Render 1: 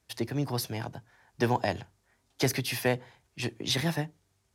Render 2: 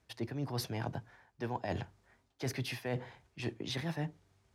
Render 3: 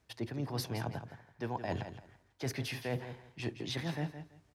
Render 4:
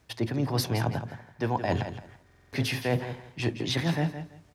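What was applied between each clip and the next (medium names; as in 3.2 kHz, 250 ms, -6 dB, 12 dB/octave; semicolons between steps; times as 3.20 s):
low-pass 3 kHz 6 dB/octave; reverse; compression 10:1, threshold -37 dBFS, peak gain reduction 16.5 dB; reverse; trim +3.5 dB
feedback delay 167 ms, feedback 21%, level -10.5 dB
on a send at -16.5 dB: reverberation RT60 0.45 s, pre-delay 3 ms; on the sum: buffer glitch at 2.25 s, samples 2048, times 5; trim +9 dB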